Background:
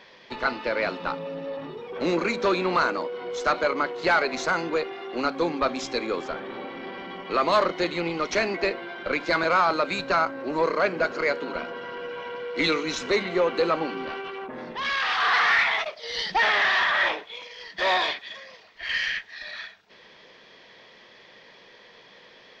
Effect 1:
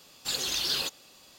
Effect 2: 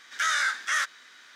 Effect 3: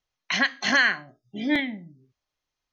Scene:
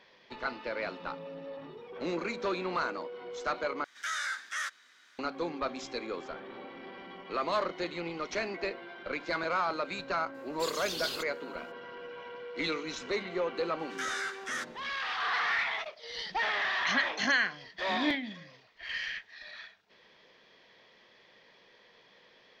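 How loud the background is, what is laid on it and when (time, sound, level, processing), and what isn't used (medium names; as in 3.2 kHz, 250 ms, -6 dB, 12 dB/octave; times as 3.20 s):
background -9.5 dB
3.84 s: replace with 2 -9 dB
10.34 s: add 1 -6.5 dB + upward expansion, over -45 dBFS
13.79 s: add 2 -10 dB
16.55 s: add 3 -7 dB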